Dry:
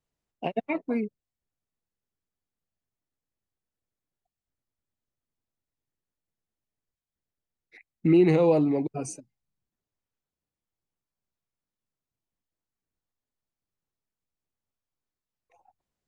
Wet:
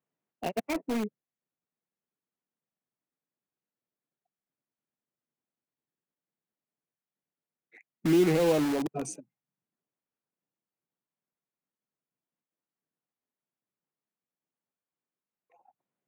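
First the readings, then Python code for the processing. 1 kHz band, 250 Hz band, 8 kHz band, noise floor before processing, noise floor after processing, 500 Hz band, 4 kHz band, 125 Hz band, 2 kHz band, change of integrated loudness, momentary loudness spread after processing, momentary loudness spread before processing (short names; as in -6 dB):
-2.0 dB, -3.5 dB, +2.0 dB, under -85 dBFS, under -85 dBFS, -3.5 dB, +6.0 dB, -5.5 dB, 0.0 dB, -3.5 dB, 15 LU, 17 LU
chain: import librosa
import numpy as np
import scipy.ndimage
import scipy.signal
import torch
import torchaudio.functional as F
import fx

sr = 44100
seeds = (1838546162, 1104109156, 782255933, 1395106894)

p1 = fx.wiener(x, sr, points=9)
p2 = scipy.signal.sosfilt(scipy.signal.butter(4, 150.0, 'highpass', fs=sr, output='sos'), p1)
p3 = (np.mod(10.0 ** (23.5 / 20.0) * p2 + 1.0, 2.0) - 1.0) / 10.0 ** (23.5 / 20.0)
p4 = p2 + (p3 * 10.0 ** (-7.0 / 20.0))
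y = p4 * 10.0 ** (-3.5 / 20.0)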